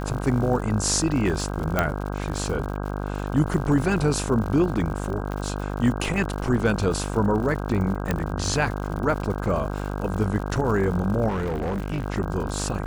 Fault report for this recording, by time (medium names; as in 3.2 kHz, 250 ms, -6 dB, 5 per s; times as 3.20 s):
buzz 50 Hz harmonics 32 -29 dBFS
crackle 110 per s -32 dBFS
1.79 s: pop -7 dBFS
5.32 s: pop -19 dBFS
8.11 s: pop -10 dBFS
11.28–12.06 s: clipped -23 dBFS